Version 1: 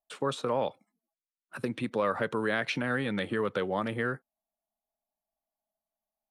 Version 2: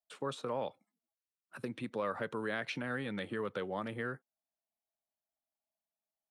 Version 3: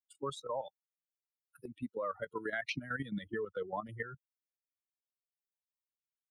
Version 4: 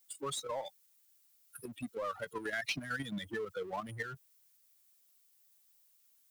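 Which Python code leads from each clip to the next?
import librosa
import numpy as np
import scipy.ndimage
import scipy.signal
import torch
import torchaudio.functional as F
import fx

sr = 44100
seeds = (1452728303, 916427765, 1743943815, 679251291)

y1 = scipy.signal.sosfilt(scipy.signal.butter(2, 48.0, 'highpass', fs=sr, output='sos'), x)
y1 = F.gain(torch.from_numpy(y1), -7.5).numpy()
y2 = fx.bin_expand(y1, sr, power=3.0)
y2 = fx.level_steps(y2, sr, step_db=11)
y2 = F.gain(torch.from_numpy(y2), 8.5).numpy()
y3 = scipy.signal.lfilter([1.0, -0.8], [1.0], y2)
y3 = fx.power_curve(y3, sr, exponent=0.7)
y3 = F.gain(torch.from_numpy(y3), 8.0).numpy()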